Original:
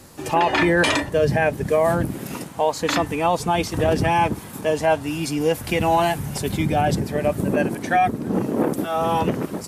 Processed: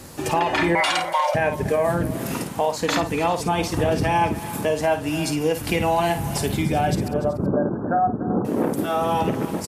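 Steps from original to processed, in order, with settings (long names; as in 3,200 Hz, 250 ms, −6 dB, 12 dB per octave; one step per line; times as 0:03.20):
0:07.08–0:08.45: Butterworth low-pass 1,500 Hz 96 dB per octave
downward compressor 2 to 1, threshold −28 dBFS, peak gain reduction 8 dB
0:00.75–0:01.35: frequency shifter +450 Hz
multi-tap delay 53/291/380 ms −9.5/−15.5/−18.5 dB
level +4.5 dB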